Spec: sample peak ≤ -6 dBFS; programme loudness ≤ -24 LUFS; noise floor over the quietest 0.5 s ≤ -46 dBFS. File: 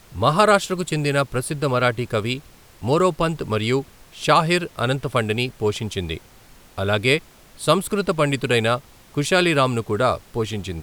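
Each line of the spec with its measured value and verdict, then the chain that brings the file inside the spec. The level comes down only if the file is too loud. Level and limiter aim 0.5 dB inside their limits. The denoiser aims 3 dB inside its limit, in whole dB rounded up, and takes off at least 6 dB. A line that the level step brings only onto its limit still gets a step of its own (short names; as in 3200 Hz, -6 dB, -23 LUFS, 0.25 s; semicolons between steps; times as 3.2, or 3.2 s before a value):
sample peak -3.0 dBFS: fail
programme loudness -21.0 LUFS: fail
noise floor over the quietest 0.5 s -48 dBFS: OK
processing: gain -3.5 dB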